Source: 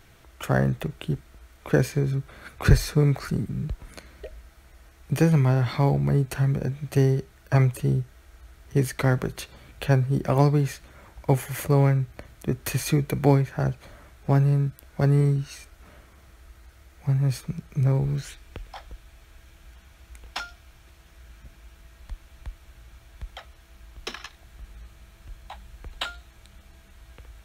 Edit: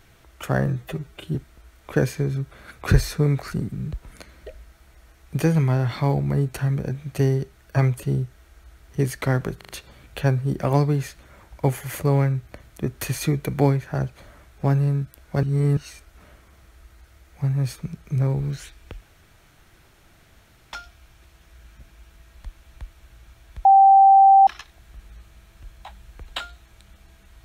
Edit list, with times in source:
0:00.66–0:01.12: time-stretch 1.5×
0:09.34: stutter 0.04 s, 4 plays
0:15.08–0:15.42: reverse
0:18.66–0:20.38: fill with room tone
0:23.30–0:24.12: beep over 781 Hz −8.5 dBFS

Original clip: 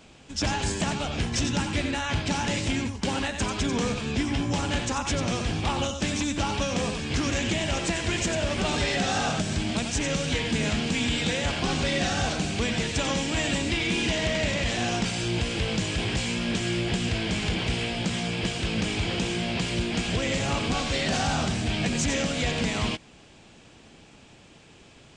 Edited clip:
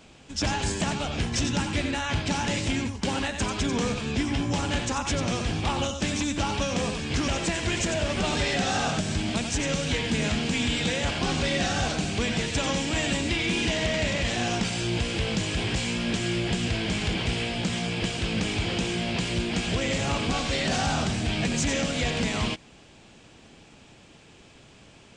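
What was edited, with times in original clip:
0:07.28–0:07.69: remove

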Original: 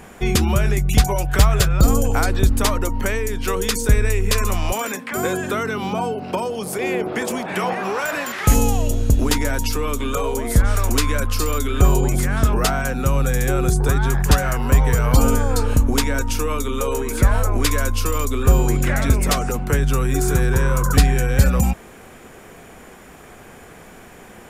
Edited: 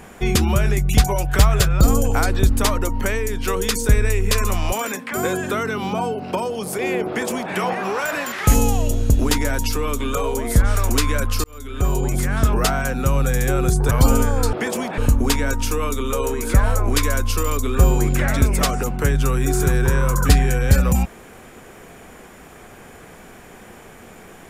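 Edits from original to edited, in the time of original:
0:07.08–0:07.53: duplicate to 0:15.66
0:11.44–0:12.61: fade in equal-power
0:13.91–0:15.04: remove

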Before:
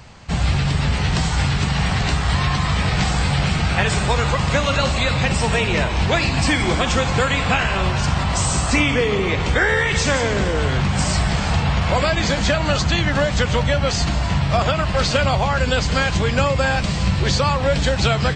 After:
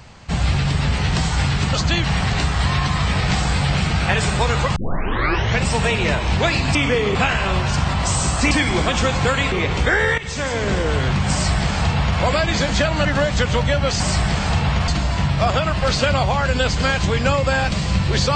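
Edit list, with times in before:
0:04.45: tape start 0.88 s
0:06.44–0:07.45: swap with 0:08.81–0:09.21
0:09.87–0:10.43: fade in, from −14 dB
0:11.01–0:11.89: duplicate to 0:14.00
0:12.74–0:13.05: move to 0:01.73

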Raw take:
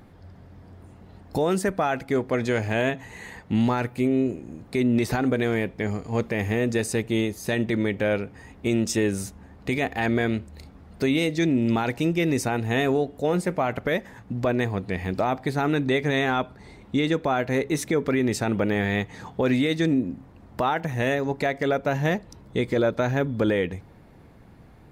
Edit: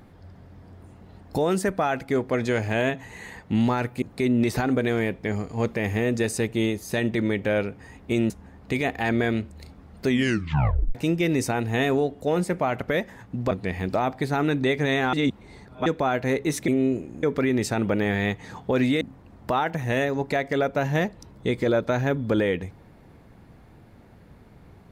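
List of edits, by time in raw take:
0:04.02–0:04.57: move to 0:17.93
0:08.85–0:09.27: remove
0:11.04: tape stop 0.88 s
0:14.48–0:14.76: remove
0:16.38–0:17.11: reverse
0:19.71–0:20.11: remove

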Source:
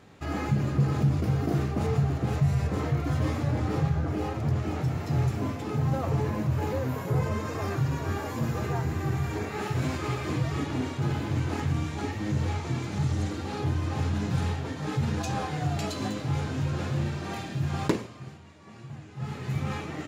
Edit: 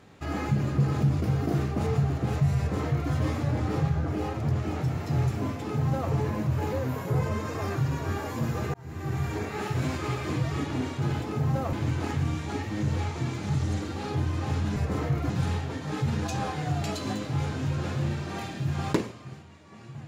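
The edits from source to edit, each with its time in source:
0:02.58–0:03.12: duplicate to 0:14.25
0:05.60–0:06.11: duplicate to 0:11.22
0:08.74–0:09.21: fade in

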